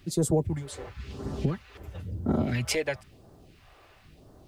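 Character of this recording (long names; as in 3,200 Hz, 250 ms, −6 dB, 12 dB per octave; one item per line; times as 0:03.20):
phaser sweep stages 2, 0.98 Hz, lowest notch 160–2,400 Hz
a quantiser's noise floor 12 bits, dither none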